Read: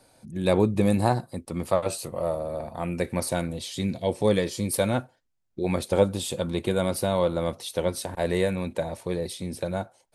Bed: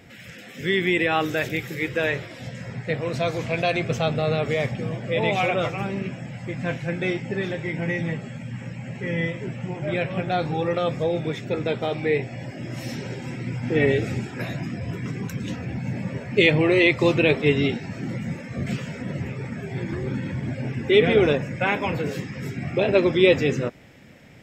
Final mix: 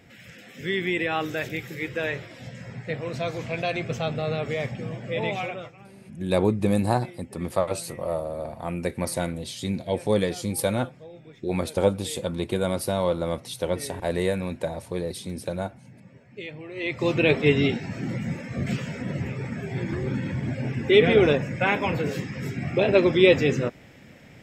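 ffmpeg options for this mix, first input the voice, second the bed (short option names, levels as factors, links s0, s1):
-filter_complex "[0:a]adelay=5850,volume=0.944[s0];[1:a]volume=6.31,afade=t=out:st=5.24:d=0.48:silence=0.158489,afade=t=in:st=16.74:d=0.61:silence=0.0944061[s1];[s0][s1]amix=inputs=2:normalize=0"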